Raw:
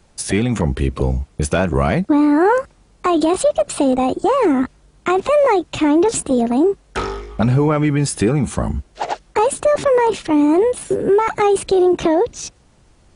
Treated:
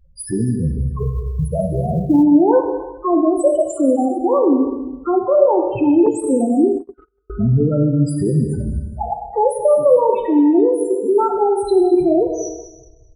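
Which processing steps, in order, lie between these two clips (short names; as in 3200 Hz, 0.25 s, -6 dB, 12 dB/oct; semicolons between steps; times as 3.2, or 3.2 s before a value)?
loudest bins only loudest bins 4; in parallel at 0 dB: compressor 16:1, threshold -28 dBFS, peak gain reduction 18 dB; on the sum: non-linear reverb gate 0.45 s falling, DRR 3 dB; 0.99–2.23 short-mantissa float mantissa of 6-bit; on a send: feedback echo 0.205 s, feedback 35%, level -17 dB; 6.06–7.3 on the sum: gate -17 dBFS, range -44 dB; gain -1.5 dB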